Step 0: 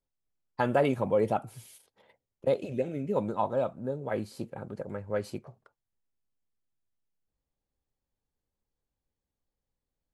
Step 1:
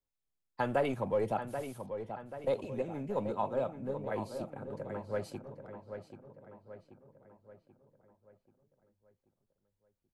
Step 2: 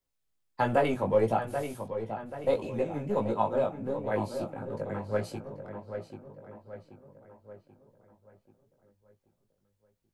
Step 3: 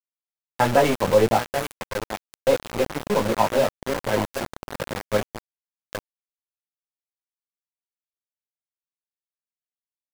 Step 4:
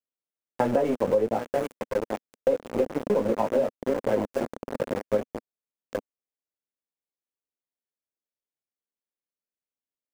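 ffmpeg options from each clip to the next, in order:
ffmpeg -i in.wav -filter_complex "[0:a]acrossover=split=130|420|2500[link_01][link_02][link_03][link_04];[link_02]aeval=exprs='clip(val(0),-1,0.0168)':channel_layout=same[link_05];[link_01][link_05][link_03][link_04]amix=inputs=4:normalize=0,asplit=2[link_06][link_07];[link_07]adelay=784,lowpass=frequency=3200:poles=1,volume=-8.5dB,asplit=2[link_08][link_09];[link_09]adelay=784,lowpass=frequency=3200:poles=1,volume=0.5,asplit=2[link_10][link_11];[link_11]adelay=784,lowpass=frequency=3200:poles=1,volume=0.5,asplit=2[link_12][link_13];[link_13]adelay=784,lowpass=frequency=3200:poles=1,volume=0.5,asplit=2[link_14][link_15];[link_15]adelay=784,lowpass=frequency=3200:poles=1,volume=0.5,asplit=2[link_16][link_17];[link_17]adelay=784,lowpass=frequency=3200:poles=1,volume=0.5[link_18];[link_06][link_08][link_10][link_12][link_14][link_16][link_18]amix=inputs=7:normalize=0,volume=-4.5dB" out.wav
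ffmpeg -i in.wav -af "flanger=delay=17.5:depth=2.9:speed=1.5,volume=8.5dB" out.wav
ffmpeg -i in.wav -af "aeval=exprs='val(0)*gte(abs(val(0)),0.0335)':channel_layout=same,volume=7.5dB" out.wav
ffmpeg -i in.wav -af "equalizer=frequency=250:width_type=o:width=1:gain=9,equalizer=frequency=500:width_type=o:width=1:gain=10,equalizer=frequency=4000:width_type=o:width=1:gain=-5,equalizer=frequency=16000:width_type=o:width=1:gain=-7,acompressor=threshold=-14dB:ratio=6,volume=-6dB" out.wav

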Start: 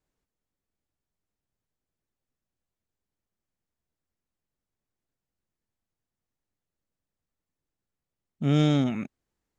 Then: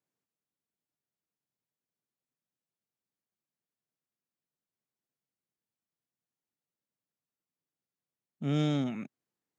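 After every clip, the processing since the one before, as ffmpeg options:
ffmpeg -i in.wav -af "highpass=frequency=120:width=0.5412,highpass=frequency=120:width=1.3066,volume=-6.5dB" out.wav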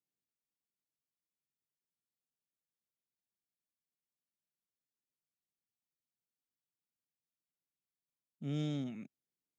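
ffmpeg -i in.wav -af "equalizer=frequency=1100:width_type=o:width=1.6:gain=-9.5,volume=-7dB" out.wav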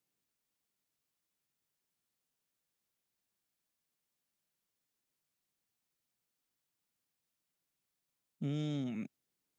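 ffmpeg -i in.wav -af "acompressor=threshold=-42dB:ratio=6,volume=8dB" out.wav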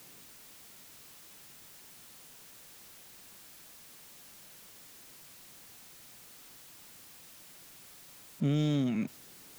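ffmpeg -i in.wav -af "aeval=exprs='val(0)+0.5*0.00237*sgn(val(0))':channel_layout=same,volume=7.5dB" out.wav

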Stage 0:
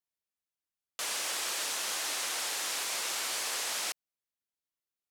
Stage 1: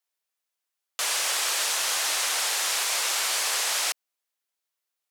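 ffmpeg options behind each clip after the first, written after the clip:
ffmpeg -i in.wav -af "highpass=490,volume=8dB" out.wav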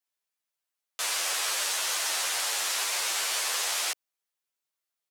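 ffmpeg -i in.wav -filter_complex "[0:a]asplit=2[link_01][link_02];[link_02]adelay=10.7,afreqshift=-2.7[link_03];[link_01][link_03]amix=inputs=2:normalize=1" out.wav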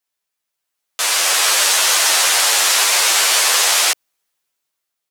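ffmpeg -i in.wav -af "dynaudnorm=framelen=290:gausssize=7:maxgain=8dB,volume=7dB" out.wav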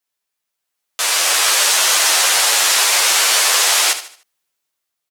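ffmpeg -i in.wav -af "aecho=1:1:75|150|225|300:0.266|0.0958|0.0345|0.0124" out.wav

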